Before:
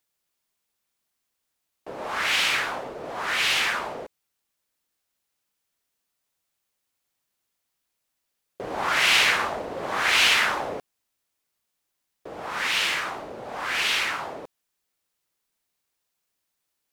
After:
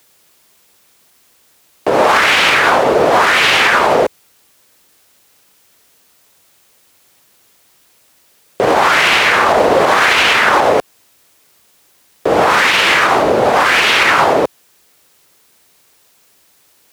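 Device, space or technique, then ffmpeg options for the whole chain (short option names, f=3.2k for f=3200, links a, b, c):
mastering chain: -filter_complex "[0:a]highpass=53,equalizer=f=440:t=o:w=0.94:g=3,acrossover=split=590|1800|5100[a][b][c][d];[a]acompressor=threshold=-38dB:ratio=4[e];[b]acompressor=threshold=-27dB:ratio=4[f];[c]acompressor=threshold=-33dB:ratio=4[g];[d]acompressor=threshold=-46dB:ratio=4[h];[e][f][g][h]amix=inputs=4:normalize=0,acompressor=threshold=-33dB:ratio=2.5,alimiter=level_in=27.5dB:limit=-1dB:release=50:level=0:latency=1,volume=-1dB"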